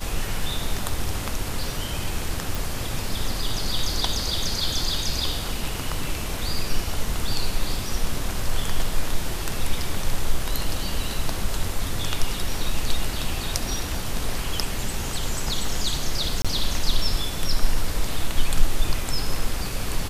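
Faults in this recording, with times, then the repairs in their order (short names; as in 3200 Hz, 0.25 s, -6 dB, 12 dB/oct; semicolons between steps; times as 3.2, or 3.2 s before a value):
2.55 pop
16.42–16.45 gap 26 ms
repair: de-click; interpolate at 16.42, 26 ms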